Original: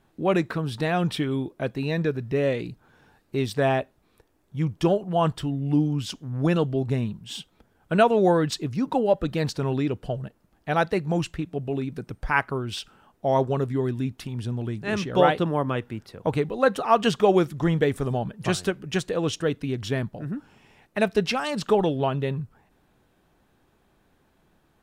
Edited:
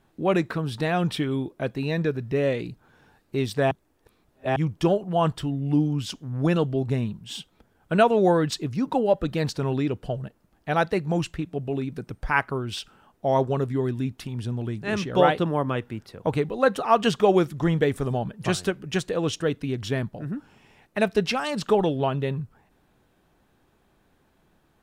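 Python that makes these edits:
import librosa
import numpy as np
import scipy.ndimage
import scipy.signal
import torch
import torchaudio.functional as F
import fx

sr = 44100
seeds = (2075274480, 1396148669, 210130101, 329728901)

y = fx.edit(x, sr, fx.reverse_span(start_s=3.71, length_s=0.85), tone=tone)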